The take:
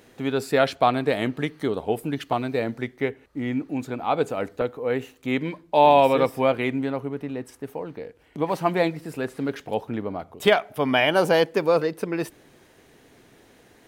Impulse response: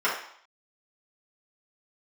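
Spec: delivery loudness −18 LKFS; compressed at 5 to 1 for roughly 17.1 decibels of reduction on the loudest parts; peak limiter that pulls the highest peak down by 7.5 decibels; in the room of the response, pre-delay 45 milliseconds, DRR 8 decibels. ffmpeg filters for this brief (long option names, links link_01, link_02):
-filter_complex "[0:a]acompressor=threshold=-31dB:ratio=5,alimiter=level_in=1dB:limit=-24dB:level=0:latency=1,volume=-1dB,asplit=2[link_01][link_02];[1:a]atrim=start_sample=2205,adelay=45[link_03];[link_02][link_03]afir=irnorm=-1:irlink=0,volume=-22.5dB[link_04];[link_01][link_04]amix=inputs=2:normalize=0,volume=18.5dB"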